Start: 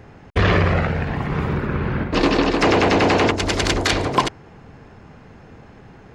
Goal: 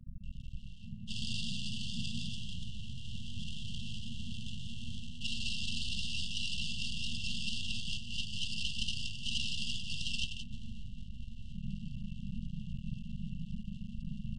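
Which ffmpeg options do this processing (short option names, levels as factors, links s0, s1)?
-filter_complex "[0:a]acrusher=bits=8:mode=log:mix=0:aa=0.000001,firequalizer=gain_entry='entry(120,0);entry(190,-21);entry(290,3);entry(470,11);entry(660,-12);entry(1400,0);entry(2100,2);entry(3700,-22);entry(5600,12);entry(8600,-20)':delay=0.05:min_phase=1,acrossover=split=250|1000[s0][s1][s2];[s2]adelay=100[s3];[s1]adelay=640[s4];[s0][s4][s3]amix=inputs=3:normalize=0,acompressor=threshold=0.0891:ratio=12,adynamicequalizer=threshold=0.00316:dfrequency=5600:dqfactor=1.4:tfrequency=5600:tqfactor=1.4:attack=5:release=100:ratio=0.375:range=3:mode=boostabove:tftype=bell,afftfilt=real='re*lt(hypot(re,im),0.0501)':imag='im*lt(hypot(re,im),0.0501)':win_size=1024:overlap=0.75,asplit=2[s5][s6];[s6]aecho=0:1:42|75:0.168|0.398[s7];[s5][s7]amix=inputs=2:normalize=0,aeval=exprs='max(val(0),0)':c=same,afftfilt=real='re*(1-between(b*sr/4096,570,6300))':imag='im*(1-between(b*sr/4096,570,6300))':win_size=4096:overlap=0.75,asetrate=18846,aresample=44100,volume=3.55"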